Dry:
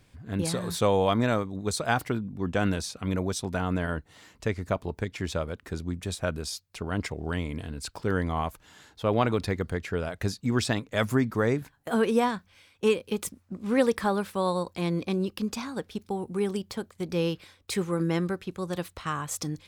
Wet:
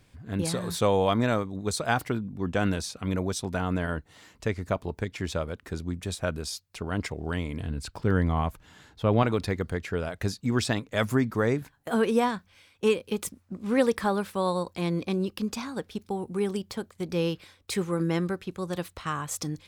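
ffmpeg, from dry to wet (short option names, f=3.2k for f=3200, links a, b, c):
-filter_complex "[0:a]asettb=1/sr,asplit=3[a][b][c];[a]atrim=end=7.604[d];[b]atrim=start=7.6:end=9.23,asetpts=PTS-STARTPTS,afade=t=in:d=0.004:c=qsin,afade=t=out:st=1.626:d=0.004:c=qsin,bass=f=250:g=6,treble=f=4k:g=-4[e];[c]atrim=start=9.226[f];[d][e]acrossfade=d=0.004:c1=hsin:c2=qsin[g];[g][f]acrossfade=d=0.004:c1=qsin:c2=hsin"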